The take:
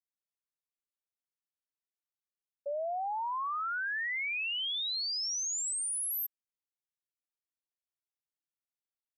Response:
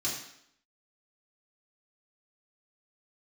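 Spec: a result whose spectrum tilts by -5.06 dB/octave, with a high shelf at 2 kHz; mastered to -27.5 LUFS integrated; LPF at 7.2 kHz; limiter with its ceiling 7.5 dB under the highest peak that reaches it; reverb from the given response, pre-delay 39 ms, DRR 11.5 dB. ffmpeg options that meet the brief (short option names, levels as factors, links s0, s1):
-filter_complex "[0:a]lowpass=7200,highshelf=f=2000:g=-7.5,alimiter=level_in=5.96:limit=0.0631:level=0:latency=1,volume=0.168,asplit=2[s0][s1];[1:a]atrim=start_sample=2205,adelay=39[s2];[s1][s2]afir=irnorm=-1:irlink=0,volume=0.15[s3];[s0][s3]amix=inputs=2:normalize=0,volume=4.73"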